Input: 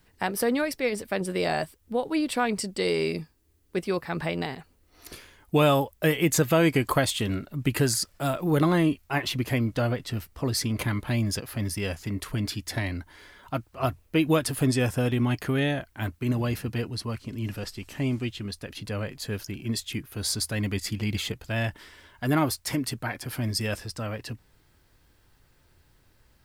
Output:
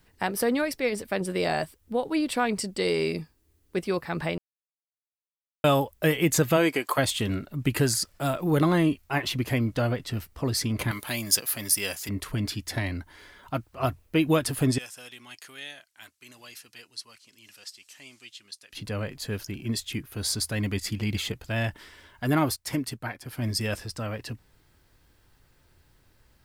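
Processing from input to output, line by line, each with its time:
0:04.38–0:05.64: silence
0:06.56–0:06.97: high-pass filter 210 Hz → 620 Hz
0:10.91–0:12.09: RIAA equalisation recording
0:14.78–0:18.73: resonant band-pass 6,700 Hz, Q 0.9
0:22.56–0:23.42: expander for the loud parts, over −47 dBFS

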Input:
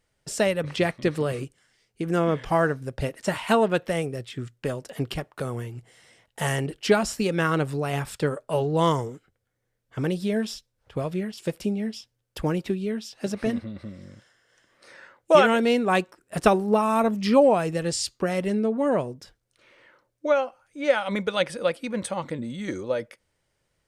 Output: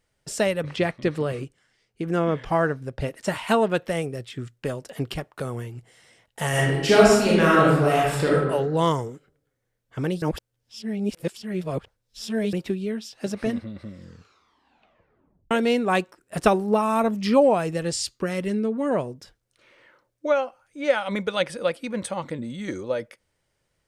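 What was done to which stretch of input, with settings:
0:00.66–0:03.08: high-shelf EQ 6,900 Hz −9 dB
0:06.49–0:08.35: thrown reverb, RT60 1.1 s, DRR −6 dB
0:10.22–0:12.53: reverse
0:13.94: tape stop 1.57 s
0:18.11–0:18.91: parametric band 720 Hz −8 dB 0.59 octaves

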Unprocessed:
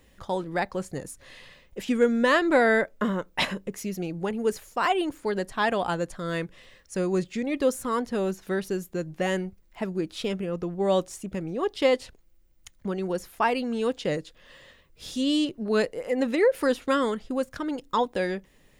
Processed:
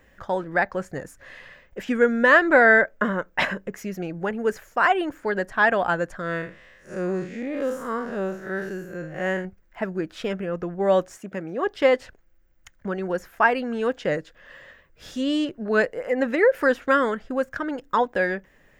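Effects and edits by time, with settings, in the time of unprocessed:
0:06.21–0:09.45: spectrum smeared in time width 137 ms
0:11.17–0:11.67: high-pass filter 180 Hz
whole clip: graphic EQ with 15 bands 630 Hz +5 dB, 1,600 Hz +11 dB, 4,000 Hz −6 dB, 10,000 Hz −10 dB

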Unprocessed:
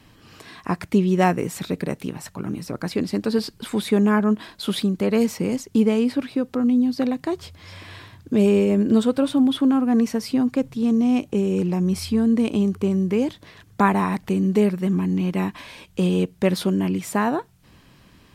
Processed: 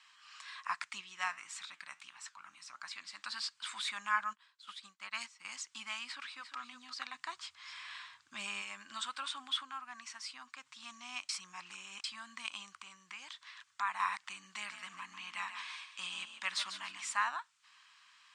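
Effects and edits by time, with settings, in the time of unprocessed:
0:01.01–0:03.22: flanger 1.6 Hz, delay 6.1 ms, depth 6.5 ms, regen +87%
0:04.33–0:05.45: expander for the loud parts 2.5 to 1, over −30 dBFS
0:06.05–0:06.58: delay throw 350 ms, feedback 10%, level −10 dB
0:07.14–0:08.62: low-shelf EQ 440 Hz +7.5 dB
0:09.63–0:10.66: clip gain −4.5 dB
0:11.29–0:12.04: reverse
0:12.72–0:14.00: downward compressor 2.5 to 1, threshold −23 dBFS
0:14.53–0:17.13: echo with shifted repeats 143 ms, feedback 32%, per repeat +37 Hz, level −9.5 dB
whole clip: elliptic band-pass filter 1,100–8,000 Hz, stop band 40 dB; level −4 dB

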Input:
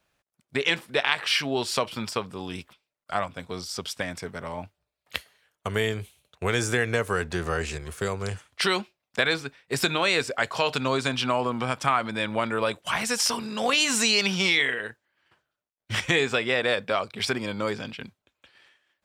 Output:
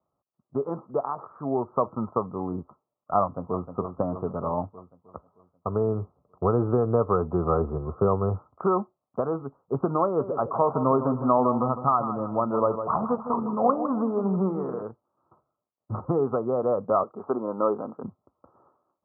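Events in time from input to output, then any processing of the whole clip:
0:03.22–0:03.67: delay throw 310 ms, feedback 65%, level −8.5 dB
0:10.04–0:14.83: repeating echo 156 ms, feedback 36%, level −10 dB
0:17.03–0:18.04: high-pass filter 320 Hz
whole clip: high-pass filter 80 Hz; automatic gain control; Chebyshev low-pass filter 1,300 Hz, order 8; level −2.5 dB

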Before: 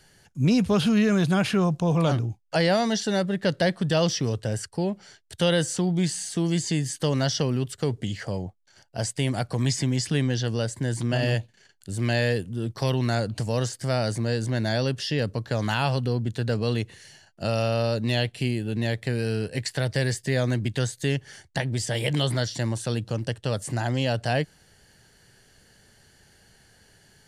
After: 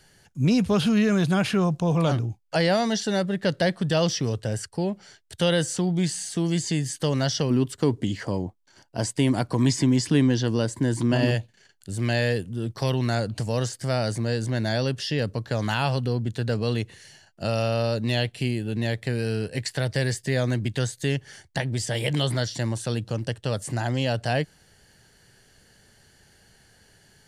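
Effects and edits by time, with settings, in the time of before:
0:07.50–0:11.31: hollow resonant body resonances 290/980 Hz, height 9 dB, ringing for 20 ms

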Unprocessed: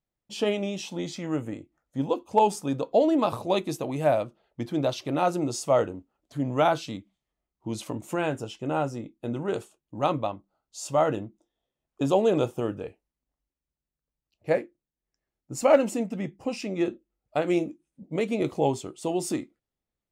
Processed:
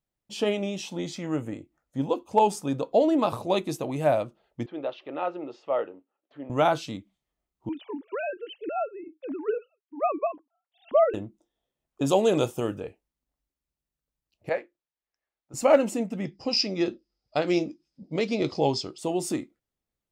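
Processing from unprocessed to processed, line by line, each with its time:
0:04.66–0:06.50: loudspeaker in its box 500–2,700 Hz, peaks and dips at 690 Hz −5 dB, 1,000 Hz −6 dB, 1,500 Hz −5 dB, 2,200 Hz −6 dB
0:07.69–0:11.14: three sine waves on the formant tracks
0:12.06–0:12.80: high-shelf EQ 3,200 Hz +10 dB
0:14.49–0:15.54: three-way crossover with the lows and the highs turned down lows −16 dB, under 510 Hz, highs −21 dB, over 5,200 Hz
0:16.25–0:18.98: low-pass with resonance 5,000 Hz, resonance Q 14

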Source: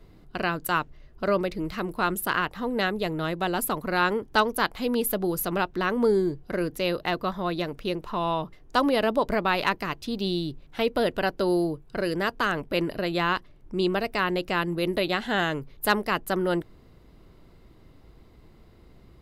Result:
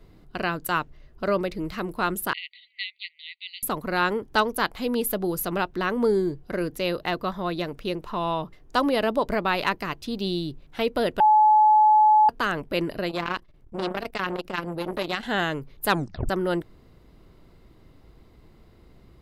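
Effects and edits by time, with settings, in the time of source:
0:02.33–0:03.63: linear-phase brick-wall band-pass 1,900–4,700 Hz
0:11.20–0:12.29: beep over 856 Hz −13 dBFS
0:13.09–0:15.23: saturating transformer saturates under 1,200 Hz
0:15.89: tape stop 0.40 s

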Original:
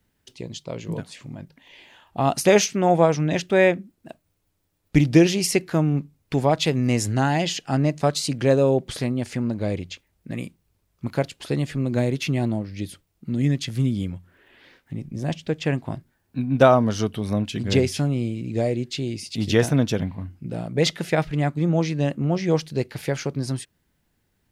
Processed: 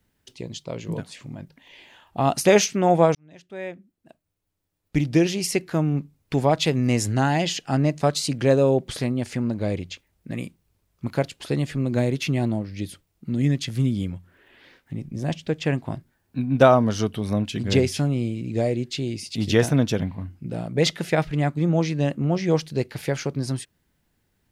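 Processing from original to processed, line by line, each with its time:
0:03.15–0:06.40: fade in linear

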